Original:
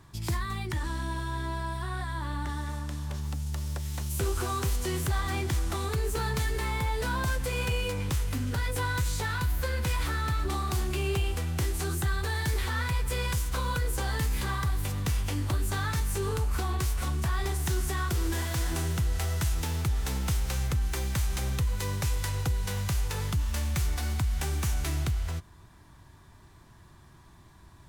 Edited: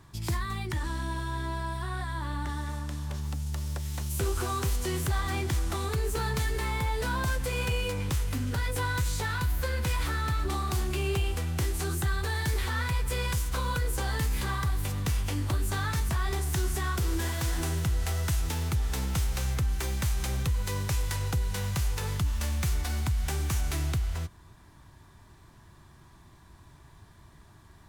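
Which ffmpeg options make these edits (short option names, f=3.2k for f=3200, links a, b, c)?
-filter_complex "[0:a]asplit=2[a][b];[a]atrim=end=16.092[c];[b]atrim=start=17.218[d];[c][d]acrossfade=d=0.004:c1=hsin:c2=hsin"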